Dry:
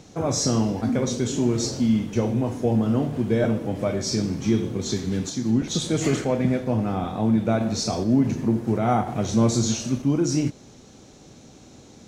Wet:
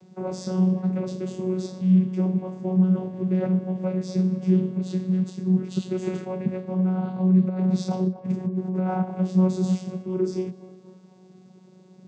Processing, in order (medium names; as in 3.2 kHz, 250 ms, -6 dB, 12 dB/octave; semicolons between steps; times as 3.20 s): 7.48–8.86 s: compressor with a negative ratio -24 dBFS, ratio -0.5; vocoder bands 16, saw 185 Hz; on a send: band-passed feedback delay 245 ms, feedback 67%, band-pass 710 Hz, level -13 dB